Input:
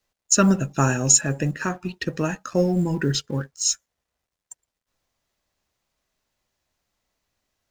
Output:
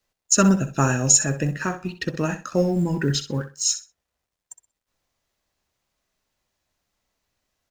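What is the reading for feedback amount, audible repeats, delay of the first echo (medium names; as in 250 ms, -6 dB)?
20%, 2, 63 ms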